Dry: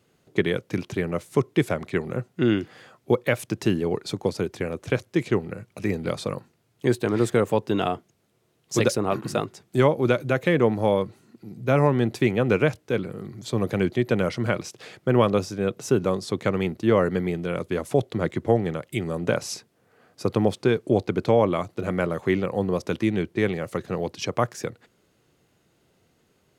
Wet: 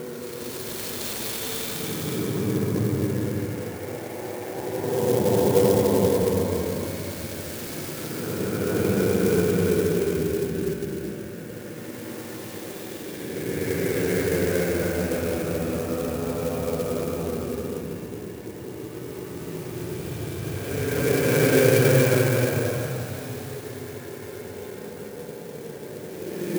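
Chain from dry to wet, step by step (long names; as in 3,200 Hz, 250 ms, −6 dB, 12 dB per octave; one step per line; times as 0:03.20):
feedback delay with all-pass diffusion 999 ms, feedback 66%, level −15 dB
extreme stretch with random phases 24×, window 0.10 s, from 0:04.03
converter with an unsteady clock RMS 0.061 ms
level +2 dB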